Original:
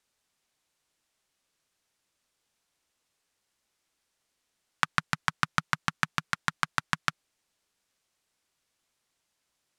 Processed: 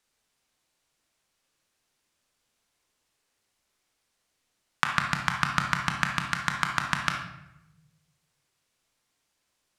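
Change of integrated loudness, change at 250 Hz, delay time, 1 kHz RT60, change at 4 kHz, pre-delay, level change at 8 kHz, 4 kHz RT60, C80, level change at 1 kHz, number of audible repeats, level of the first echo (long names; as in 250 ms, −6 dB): +2.5 dB, +4.0 dB, no echo audible, 0.85 s, +2.5 dB, 21 ms, +2.0 dB, 0.65 s, 8.5 dB, +3.0 dB, no echo audible, no echo audible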